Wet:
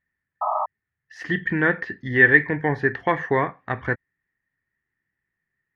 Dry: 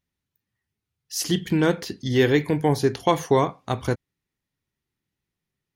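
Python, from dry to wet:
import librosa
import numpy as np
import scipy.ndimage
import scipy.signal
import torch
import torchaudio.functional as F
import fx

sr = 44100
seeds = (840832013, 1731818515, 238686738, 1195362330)

y = fx.lowpass_res(x, sr, hz=1800.0, q=13.0)
y = fx.spec_paint(y, sr, seeds[0], shape='noise', start_s=0.41, length_s=0.25, low_hz=600.0, high_hz=1300.0, level_db=-20.0)
y = F.gain(torch.from_numpy(y), -3.5).numpy()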